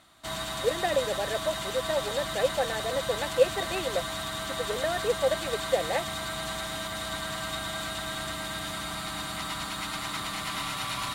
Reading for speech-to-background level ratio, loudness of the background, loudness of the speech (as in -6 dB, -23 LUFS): 2.0 dB, -32.5 LUFS, -30.5 LUFS